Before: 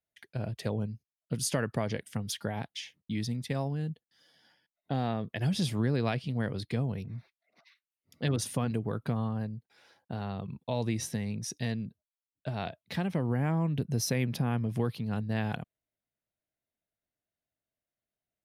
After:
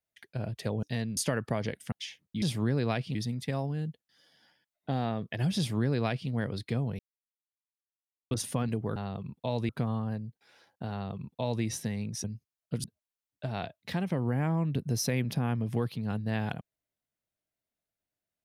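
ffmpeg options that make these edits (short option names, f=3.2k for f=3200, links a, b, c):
-filter_complex "[0:a]asplit=12[a][b][c][d][e][f][g][h][i][j][k][l];[a]atrim=end=0.832[m];[b]atrim=start=11.528:end=11.872[n];[c]atrim=start=1.428:end=2.182[o];[d]atrim=start=2.668:end=3.172[p];[e]atrim=start=5.588:end=6.322[q];[f]atrim=start=3.168:end=7.01,asetpts=PTS-STARTPTS,afade=t=out:st=3.838:d=0.004:c=hsin[r];[g]atrim=start=7.01:end=8.33,asetpts=PTS-STARTPTS,volume=0[s];[h]atrim=start=8.33:end=8.982,asetpts=PTS-STARTPTS,afade=t=in:d=0.004:c=hsin[t];[i]atrim=start=10.198:end=10.932[u];[j]atrim=start=8.978:end=11.532[v];[k]atrim=start=0.828:end=1.432[w];[l]atrim=start=11.868[x];[m][n]acrossfade=d=0.004:c1=hsin:c2=hsin[y];[y][o]acrossfade=d=0.004:c1=hsin:c2=hsin[z];[z][p]acrossfade=d=0.004:c1=hsin:c2=hsin[aa];[aa][q]acrossfade=d=0.004:c1=hsin:c2=hsin[ab];[r][s][t]concat=n=3:v=0:a=1[ac];[ab][ac]acrossfade=d=0.004:c1=hsin:c2=hsin[ad];[ad][u]acrossfade=d=0.004:c1=hsin:c2=hsin[ae];[ae][v]acrossfade=d=0.004:c1=hsin:c2=hsin[af];[af][w]acrossfade=d=0.004:c1=hsin:c2=hsin[ag];[ag][x]acrossfade=d=0.004:c1=hsin:c2=hsin"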